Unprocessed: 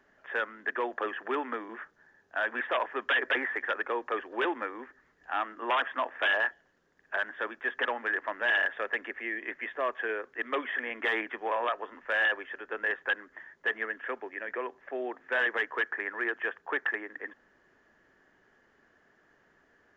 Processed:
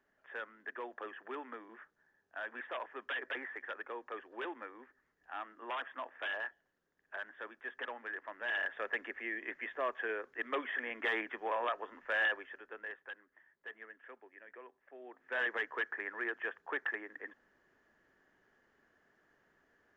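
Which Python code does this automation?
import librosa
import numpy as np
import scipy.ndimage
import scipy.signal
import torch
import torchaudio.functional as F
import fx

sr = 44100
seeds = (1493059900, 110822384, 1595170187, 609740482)

y = fx.gain(x, sr, db=fx.line((8.33, -12.0), (8.9, -5.0), (12.26, -5.0), (13.12, -18.0), (15.0, -18.0), (15.41, -6.5)))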